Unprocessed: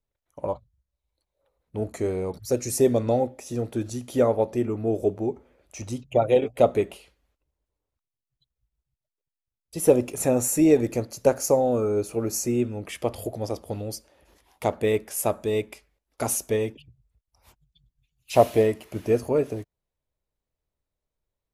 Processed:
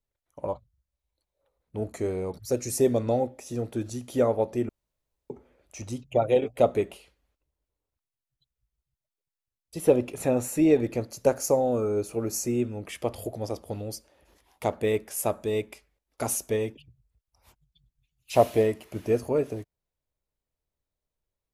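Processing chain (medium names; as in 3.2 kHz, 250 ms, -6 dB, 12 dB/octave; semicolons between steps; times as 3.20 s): 4.69–5.30 s: room tone; 9.78–11.01 s: resonant high shelf 4.8 kHz -6 dB, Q 1.5; trim -2.5 dB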